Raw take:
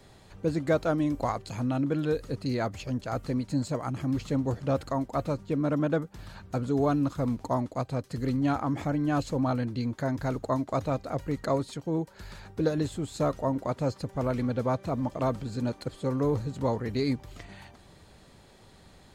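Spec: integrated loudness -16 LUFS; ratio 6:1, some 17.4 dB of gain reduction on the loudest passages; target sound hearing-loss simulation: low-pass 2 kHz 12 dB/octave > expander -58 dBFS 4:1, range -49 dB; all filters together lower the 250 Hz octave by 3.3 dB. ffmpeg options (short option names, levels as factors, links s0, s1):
-af "equalizer=f=250:t=o:g=-4,acompressor=threshold=0.00891:ratio=6,lowpass=2000,agate=range=0.00355:threshold=0.00126:ratio=4,volume=28.2"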